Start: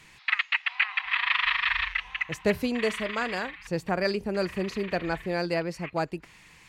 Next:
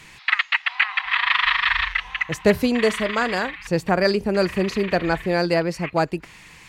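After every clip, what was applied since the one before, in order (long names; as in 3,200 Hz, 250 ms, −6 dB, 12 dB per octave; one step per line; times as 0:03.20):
dynamic equaliser 2,500 Hz, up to −5 dB, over −39 dBFS, Q 2.6
level +8 dB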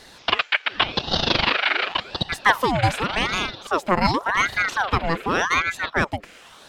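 ring modulator whose carrier an LFO sweeps 1,100 Hz, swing 70%, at 0.88 Hz
level +2 dB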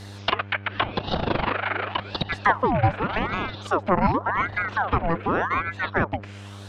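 loose part that buzzes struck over −24 dBFS, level −17 dBFS
treble cut that deepens with the level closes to 1,400 Hz, closed at −18.5 dBFS
hum with harmonics 100 Hz, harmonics 17, −40 dBFS −8 dB per octave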